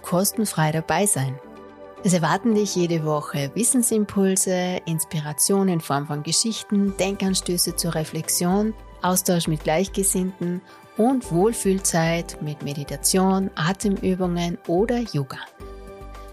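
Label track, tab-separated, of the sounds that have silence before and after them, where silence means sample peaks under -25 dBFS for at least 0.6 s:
2.050000	15.430000	sound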